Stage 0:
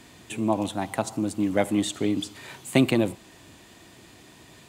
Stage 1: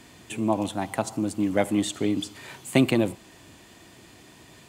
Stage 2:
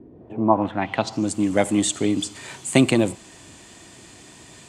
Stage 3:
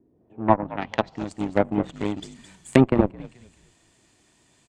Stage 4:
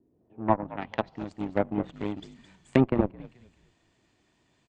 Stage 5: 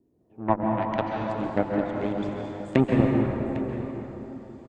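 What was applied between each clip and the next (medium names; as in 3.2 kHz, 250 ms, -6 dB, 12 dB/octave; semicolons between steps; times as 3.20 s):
band-stop 3.8 kHz, Q 25
low-pass sweep 390 Hz -> 8.2 kHz, 0.11–1.33 s; trim +3.5 dB
frequency-shifting echo 215 ms, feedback 40%, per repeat -60 Hz, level -9.5 dB; Chebyshev shaper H 7 -18 dB, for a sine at -1 dBFS; low-pass that closes with the level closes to 1.1 kHz, closed at -20 dBFS; trim +2 dB
distance through air 120 m; trim -5 dB
delay 803 ms -14.5 dB; plate-style reverb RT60 3.5 s, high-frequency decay 0.5×, pre-delay 120 ms, DRR -0.5 dB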